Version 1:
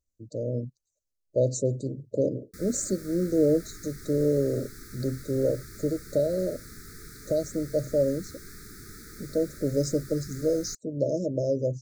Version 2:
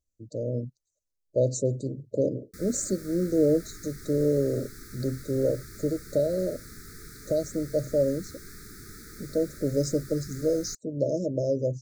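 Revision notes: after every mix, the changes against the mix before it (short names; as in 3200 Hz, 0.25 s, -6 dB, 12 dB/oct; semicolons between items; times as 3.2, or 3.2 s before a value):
none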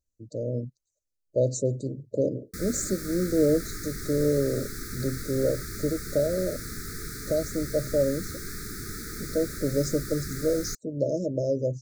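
background +8.5 dB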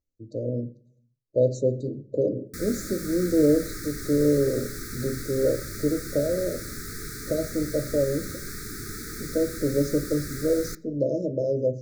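speech: add air absorption 150 m; reverb: on, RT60 0.45 s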